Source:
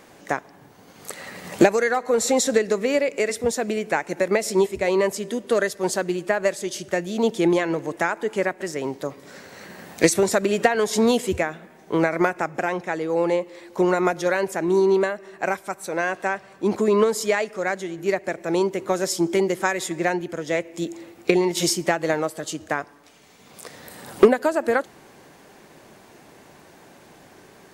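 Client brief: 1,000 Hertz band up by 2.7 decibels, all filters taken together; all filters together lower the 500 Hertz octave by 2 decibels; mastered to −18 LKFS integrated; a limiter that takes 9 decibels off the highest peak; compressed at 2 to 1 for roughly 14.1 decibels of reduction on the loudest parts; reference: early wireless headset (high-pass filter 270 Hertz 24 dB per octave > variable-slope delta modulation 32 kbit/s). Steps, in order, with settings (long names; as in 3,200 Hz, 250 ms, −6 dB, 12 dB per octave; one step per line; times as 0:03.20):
parametric band 500 Hz −3.5 dB
parametric band 1,000 Hz +5 dB
downward compressor 2 to 1, threshold −37 dBFS
brickwall limiter −23 dBFS
high-pass filter 270 Hz 24 dB per octave
variable-slope delta modulation 32 kbit/s
level +18.5 dB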